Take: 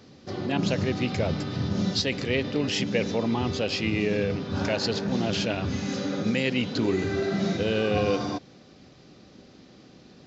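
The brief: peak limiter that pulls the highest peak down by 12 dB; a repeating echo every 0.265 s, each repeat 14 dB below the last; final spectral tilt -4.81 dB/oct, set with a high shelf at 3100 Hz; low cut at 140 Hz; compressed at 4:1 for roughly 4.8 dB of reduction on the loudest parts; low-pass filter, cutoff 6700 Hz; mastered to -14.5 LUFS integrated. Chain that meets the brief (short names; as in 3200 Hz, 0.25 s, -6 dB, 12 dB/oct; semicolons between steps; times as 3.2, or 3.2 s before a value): HPF 140 Hz; LPF 6700 Hz; high shelf 3100 Hz +6.5 dB; compressor 4:1, threshold -26 dBFS; limiter -26.5 dBFS; feedback echo 0.265 s, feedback 20%, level -14 dB; gain +20.5 dB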